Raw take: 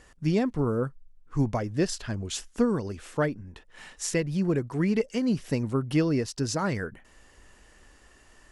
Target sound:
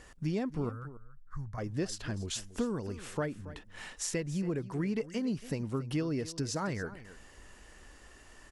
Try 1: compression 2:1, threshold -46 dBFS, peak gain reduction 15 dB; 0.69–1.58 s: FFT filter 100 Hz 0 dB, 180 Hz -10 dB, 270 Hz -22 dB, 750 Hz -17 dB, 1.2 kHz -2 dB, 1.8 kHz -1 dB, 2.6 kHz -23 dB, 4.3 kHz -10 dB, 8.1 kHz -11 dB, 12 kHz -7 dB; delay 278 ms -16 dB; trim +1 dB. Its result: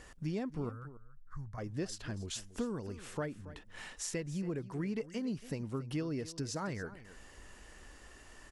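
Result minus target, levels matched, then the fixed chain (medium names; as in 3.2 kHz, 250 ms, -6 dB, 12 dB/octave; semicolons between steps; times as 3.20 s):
compression: peak gain reduction +4 dB
compression 2:1, threshold -38 dBFS, peak gain reduction 11 dB; 0.69–1.58 s: FFT filter 100 Hz 0 dB, 180 Hz -10 dB, 270 Hz -22 dB, 750 Hz -17 dB, 1.2 kHz -2 dB, 1.8 kHz -1 dB, 2.6 kHz -23 dB, 4.3 kHz -10 dB, 8.1 kHz -11 dB, 12 kHz -7 dB; delay 278 ms -16 dB; trim +1 dB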